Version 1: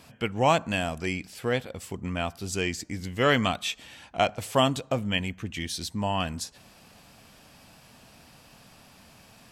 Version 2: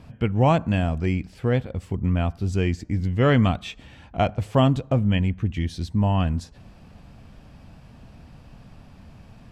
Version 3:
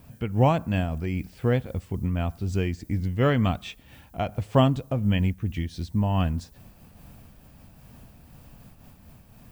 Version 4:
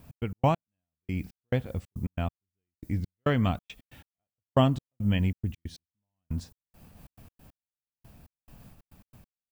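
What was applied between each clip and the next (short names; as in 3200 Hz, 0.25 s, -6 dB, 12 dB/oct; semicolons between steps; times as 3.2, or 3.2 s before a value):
RIAA curve playback
added noise violet -57 dBFS; noise-modulated level, depth 65%
step gate "x.x.x.....xx..xx" 138 bpm -60 dB; gain -2.5 dB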